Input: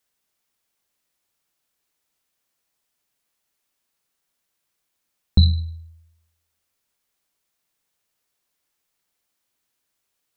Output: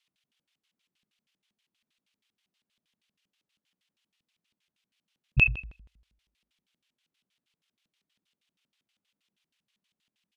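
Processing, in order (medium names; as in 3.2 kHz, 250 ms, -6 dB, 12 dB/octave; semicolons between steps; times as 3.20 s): pitch shift -7.5 st; LFO band-pass square 6.3 Hz 200–3000 Hz; trim +7.5 dB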